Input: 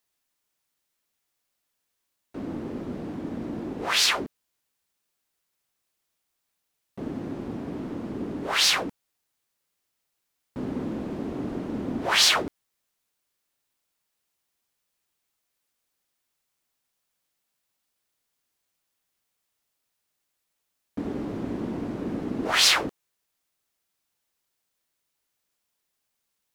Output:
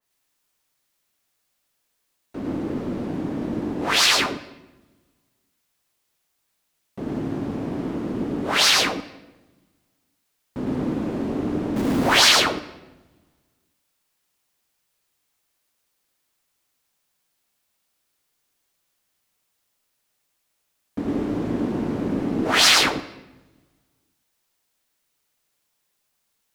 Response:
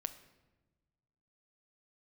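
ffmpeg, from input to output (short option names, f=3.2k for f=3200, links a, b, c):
-filter_complex "[0:a]asettb=1/sr,asplit=3[a][b][c];[a]atrim=end=11.764[d];[b]atrim=start=11.76:end=12.2,asetpts=PTS-STARTPTS,afade=t=in:d=0.004:c=qsin,afade=t=out:st=0.436:d=0.004:c=qsin,aeval=exprs='val(0)+0.5*0.0355*sgn(val(0))':c=same[e];[c]atrim=start=12.196[f];[d][e]acrossfade=d=0.004:c1=hsin:c2=qsin[g];[g][f]acrossfade=d=0.004:c1=qsin:c2=hsin,asplit=2[h][i];[1:a]atrim=start_sample=2205,adelay=107[j];[i][j]afir=irnorm=-1:irlink=0,volume=0dB[k];[h][k]amix=inputs=2:normalize=0,adynamicequalizer=threshold=0.02:dfrequency=2600:dqfactor=0.7:tfrequency=2600:tqfactor=0.7:attack=5:release=100:ratio=0.375:range=2.5:mode=cutabove:tftype=highshelf,volume=3.5dB"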